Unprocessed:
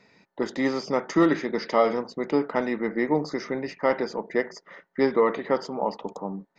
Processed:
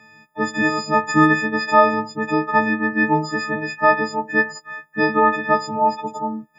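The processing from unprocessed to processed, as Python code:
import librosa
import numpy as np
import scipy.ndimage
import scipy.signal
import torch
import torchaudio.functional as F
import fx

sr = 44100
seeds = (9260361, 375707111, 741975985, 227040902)

y = fx.freq_snap(x, sr, grid_st=6)
y = fx.graphic_eq_10(y, sr, hz=(125, 250, 500, 1000, 2000, 4000), db=(12, 5, -3, 9, 7, -6))
y = y * librosa.db_to_amplitude(-1.0)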